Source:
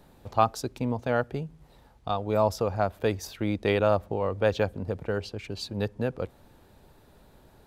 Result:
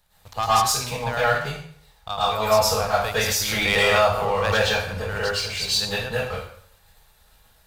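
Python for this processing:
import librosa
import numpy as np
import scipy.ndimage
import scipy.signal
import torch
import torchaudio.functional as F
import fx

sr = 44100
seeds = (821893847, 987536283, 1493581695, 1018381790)

y = fx.tone_stack(x, sr, knobs='10-0-10')
y = fx.hum_notches(y, sr, base_hz=50, count=2)
y = fx.leveller(y, sr, passes=2)
y = fx.rev_plate(y, sr, seeds[0], rt60_s=0.59, hf_ratio=0.9, predelay_ms=95, drr_db=-9.5)
y = fx.pre_swell(y, sr, db_per_s=22.0, at=(3.17, 5.22))
y = y * 10.0 ** (2.0 / 20.0)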